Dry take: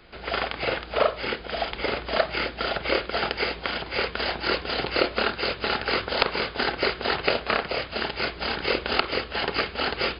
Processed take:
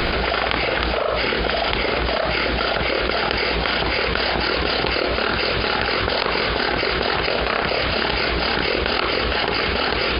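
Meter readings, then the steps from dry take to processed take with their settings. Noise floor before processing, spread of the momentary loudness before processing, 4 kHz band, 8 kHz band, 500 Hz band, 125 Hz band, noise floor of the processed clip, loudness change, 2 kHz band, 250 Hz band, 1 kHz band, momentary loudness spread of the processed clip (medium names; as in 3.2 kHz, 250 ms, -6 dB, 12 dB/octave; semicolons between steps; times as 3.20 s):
-40 dBFS, 4 LU, +6.5 dB, no reading, +5.5 dB, +11.0 dB, -23 dBFS, +6.0 dB, +6.5 dB, +7.5 dB, +6.0 dB, 1 LU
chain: level flattener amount 100%; trim -3 dB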